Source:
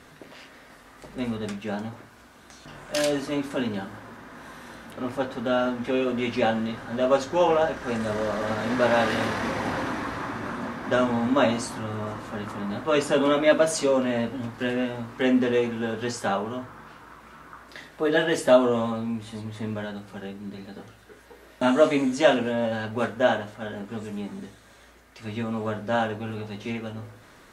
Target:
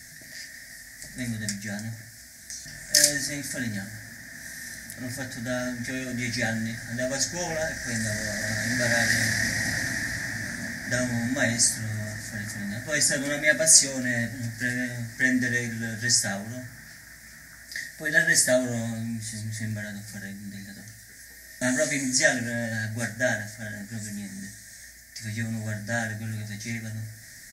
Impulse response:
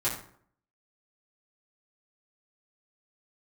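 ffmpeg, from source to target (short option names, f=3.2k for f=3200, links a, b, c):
-filter_complex "[0:a]firequalizer=gain_entry='entry(110,0);entry(250,-6);entry(420,-23);entry(660,-7);entry(1100,-29);entry(1800,11);entry(2800,-16);entry(5100,14)':delay=0.05:min_phase=1,asettb=1/sr,asplit=3[a][b][c];[a]atrim=end=19.714[d];[b]atrim=start=19.71:end=20.29,asetpts=PTS-STARTPTS,afade=t=in:d=0.004:c=qsin,afade=t=out:st=0.576:d=0.004:c=qsin,acompressor=mode=upward:threshold=-36dB:ratio=2.5[e];[c]atrim=start=20.286[f];[d][e]acrossfade=d=0.004:c1=hsin:c2=qsin[g];[g][f]acrossfade=d=0.004:c1=qsin:c2=hsin,asplit=2[h][i];[1:a]atrim=start_sample=2205[j];[i][j]afir=irnorm=-1:irlink=0,volume=-21.5dB[k];[h][k]amix=inputs=2:normalize=0,volume=1.5dB"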